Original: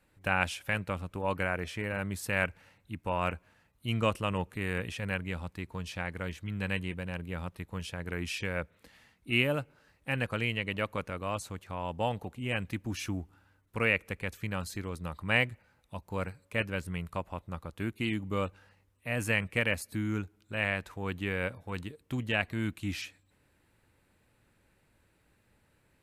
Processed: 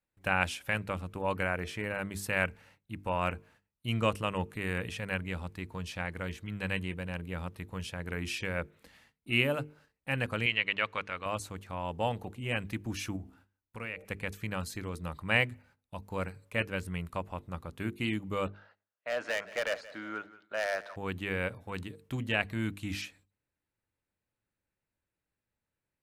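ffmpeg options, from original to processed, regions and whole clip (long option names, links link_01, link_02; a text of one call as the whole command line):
ffmpeg -i in.wav -filter_complex "[0:a]asettb=1/sr,asplit=3[link_01][link_02][link_03];[link_01]atrim=end=10.464[link_04];[link_02]atrim=start=10.46:end=11.26,asetpts=PTS-STARTPTS,afade=type=in:duration=0.004:curve=qsin,afade=type=out:start_time=0.796:duration=0.004:curve=qsin,lowpass=3500,tiltshelf=frequency=880:gain=-9[link_05];[link_03]atrim=start=11.256[link_06];[link_04][link_05]acrossfade=duration=0.004:curve1=hsin:curve2=qsin[link_07];[link_07][link_06]acrossfade=duration=0.004:curve1=qsin:curve2=hsin,asettb=1/sr,asplit=3[link_08][link_09][link_10];[link_08]atrim=end=13.164[link_11];[link_09]atrim=start=13.16:end=14.05,asetpts=PTS-STARTPTS,afade=type=in:duration=0.004:curve=qsin,afade=type=out:start_time=0.886:duration=0.004:curve=qsin,bandreject=frequency=65.27:width_type=h:width=4,bandreject=frequency=130.54:width_type=h:width=4,bandreject=frequency=195.81:width_type=h:width=4,bandreject=frequency=261.08:width_type=h:width=4,bandreject=frequency=326.35:width_type=h:width=4,bandreject=frequency=391.62:width_type=h:width=4,bandreject=frequency=456.89:width_type=h:width=4,bandreject=frequency=522.16:width_type=h:width=4,bandreject=frequency=587.43:width_type=h:width=4,bandreject=frequency=652.7:width_type=h:width=4,bandreject=frequency=717.97:width_type=h:width=4,bandreject=frequency=783.24:width_type=h:width=4,bandreject=frequency=848.51:width_type=h:width=4,acompressor=threshold=-44dB:ratio=2:attack=3.2:release=140:knee=1:detection=peak[link_12];[link_10]atrim=start=14.046[link_13];[link_11][link_12]acrossfade=duration=0.004:curve1=hsin:curve2=qsin[link_14];[link_14][link_13]acrossfade=duration=0.004:curve1=qsin:curve2=hsin,asettb=1/sr,asplit=3[link_15][link_16][link_17];[link_15]atrim=end=18.474[link_18];[link_16]atrim=start=18.47:end=20.96,asetpts=PTS-STARTPTS,afade=type=in:duration=0.004:curve=qsin,afade=type=out:start_time=2.486:duration=0.004:curve=qsin,highpass=480,equalizer=frequency=630:width_type=q:width=4:gain=10,equalizer=frequency=1400:width_type=q:width=4:gain=7,equalizer=frequency=2500:width_type=q:width=4:gain=-6,lowpass=frequency=4500:width=0.5412,lowpass=frequency=4500:width=1.3066,asoftclip=type=hard:threshold=-26.5dB,aecho=1:1:177|354|531:0.133|0.0533|0.0213,atrim=end_sample=109809[link_19];[link_17]atrim=start=20.956[link_20];[link_18][link_19]acrossfade=duration=0.004:curve1=hsin:curve2=qsin[link_21];[link_21][link_20]acrossfade=duration=0.004:curve1=qsin:curve2=hsin,agate=range=-20dB:threshold=-60dB:ratio=16:detection=peak,bandreject=frequency=50:width_type=h:width=6,bandreject=frequency=100:width_type=h:width=6,bandreject=frequency=150:width_type=h:width=6,bandreject=frequency=200:width_type=h:width=6,bandreject=frequency=250:width_type=h:width=6,bandreject=frequency=300:width_type=h:width=6,bandreject=frequency=350:width_type=h:width=6,bandreject=frequency=400:width_type=h:width=6,bandreject=frequency=450:width_type=h:width=6" out.wav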